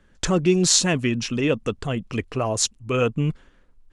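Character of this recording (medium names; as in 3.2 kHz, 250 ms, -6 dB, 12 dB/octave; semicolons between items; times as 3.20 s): noise floor -58 dBFS; spectral tilt -4.0 dB/octave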